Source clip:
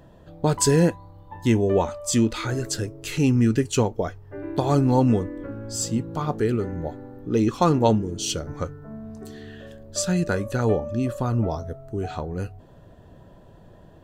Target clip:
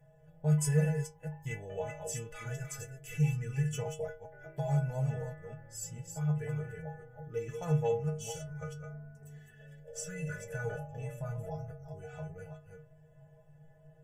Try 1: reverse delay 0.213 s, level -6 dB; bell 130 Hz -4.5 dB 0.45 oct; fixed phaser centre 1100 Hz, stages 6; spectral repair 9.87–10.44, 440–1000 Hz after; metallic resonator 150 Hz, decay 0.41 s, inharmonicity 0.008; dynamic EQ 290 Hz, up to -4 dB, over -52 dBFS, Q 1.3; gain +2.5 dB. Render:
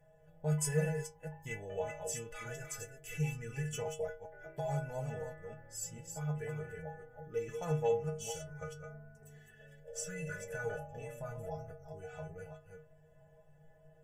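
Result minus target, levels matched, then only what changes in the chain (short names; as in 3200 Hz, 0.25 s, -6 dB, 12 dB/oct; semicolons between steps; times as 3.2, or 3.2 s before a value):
125 Hz band -3.0 dB
change: bell 130 Hz +7 dB 0.45 oct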